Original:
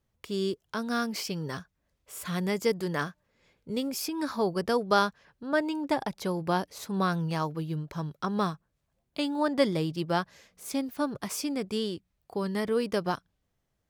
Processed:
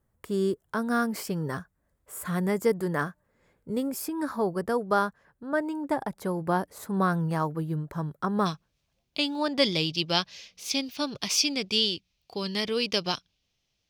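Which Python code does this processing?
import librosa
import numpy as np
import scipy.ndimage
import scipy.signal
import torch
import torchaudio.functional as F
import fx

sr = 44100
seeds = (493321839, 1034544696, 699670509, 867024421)

y = fx.band_shelf(x, sr, hz=3800.0, db=fx.steps((0.0, -10.0), (8.45, 9.0), (9.62, 15.5)), octaves=1.7)
y = fx.rider(y, sr, range_db=4, speed_s=2.0)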